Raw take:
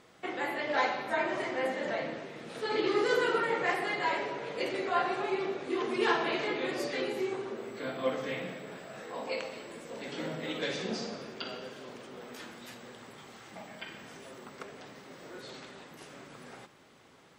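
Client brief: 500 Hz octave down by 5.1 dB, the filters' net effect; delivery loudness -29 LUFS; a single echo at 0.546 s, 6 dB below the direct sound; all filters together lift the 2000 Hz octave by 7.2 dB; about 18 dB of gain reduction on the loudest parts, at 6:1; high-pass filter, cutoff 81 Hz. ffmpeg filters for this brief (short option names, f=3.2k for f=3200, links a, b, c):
-af "highpass=81,equalizer=f=500:t=o:g=-7,equalizer=f=2k:t=o:g=9,acompressor=threshold=-41dB:ratio=6,aecho=1:1:546:0.501,volume=13.5dB"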